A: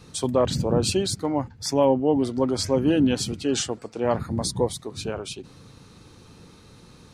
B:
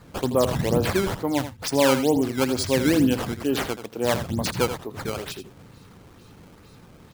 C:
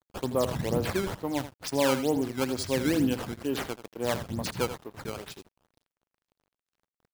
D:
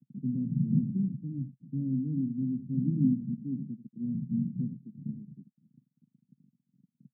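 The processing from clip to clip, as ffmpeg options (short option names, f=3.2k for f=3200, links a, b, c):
-af "acrusher=samples=14:mix=1:aa=0.000001:lfo=1:lforange=22.4:lforate=2.2,aecho=1:1:82:0.282"
-af "aeval=exprs='sgn(val(0))*max(abs(val(0))-0.00891,0)':c=same,volume=-5.5dB"
-af "acompressor=mode=upward:threshold=-38dB:ratio=2.5,asuperpass=centerf=180:order=8:qfactor=1.5,volume=7dB"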